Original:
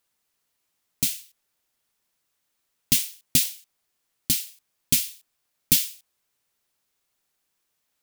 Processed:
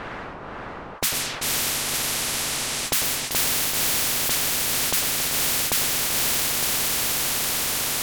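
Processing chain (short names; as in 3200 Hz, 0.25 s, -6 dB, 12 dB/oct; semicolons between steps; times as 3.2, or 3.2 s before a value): repeated pitch sweeps -1.5 st, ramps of 0.576 s; reverse; upward compressor, threshold -36 dBFS; reverse; high shelf 3600 Hz -12 dB; low-pass opened by the level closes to 1000 Hz, open at -25.5 dBFS; compressor, threshold -25 dBFS, peak gain reduction 5 dB; diffused feedback echo 0.523 s, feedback 50%, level -3 dB; on a send at -14 dB: reverb RT60 0.50 s, pre-delay 94 ms; on the sum: maximiser +21 dB; spectral compressor 10:1; gain -6.5 dB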